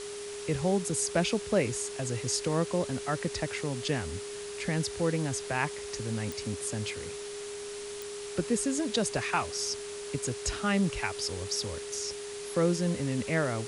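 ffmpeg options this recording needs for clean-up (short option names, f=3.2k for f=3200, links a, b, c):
-af "adeclick=t=4,bandreject=f=410:w=30,afftdn=nr=30:nf=-40"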